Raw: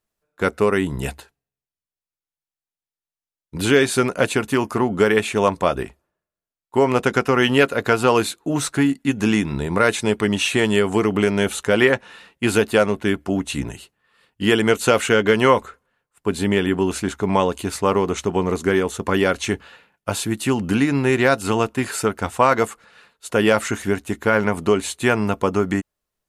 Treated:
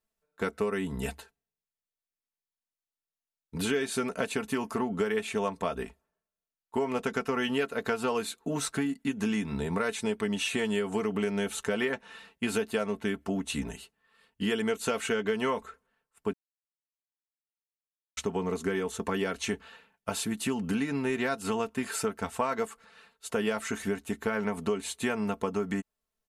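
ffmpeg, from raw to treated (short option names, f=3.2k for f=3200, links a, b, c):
-filter_complex "[0:a]asplit=3[a][b][c];[a]atrim=end=16.33,asetpts=PTS-STARTPTS,afade=t=out:st=16.326:d=0.004:c=hsin[d];[b]atrim=start=16.33:end=18.17,asetpts=PTS-STARTPTS,volume=0[e];[c]atrim=start=18.17,asetpts=PTS-STARTPTS,afade=t=in:d=0.004:c=hsin[f];[d][e][f]concat=n=3:v=0:a=1,aecho=1:1:4.5:0.59,acompressor=threshold=-21dB:ratio=3,volume=-7dB"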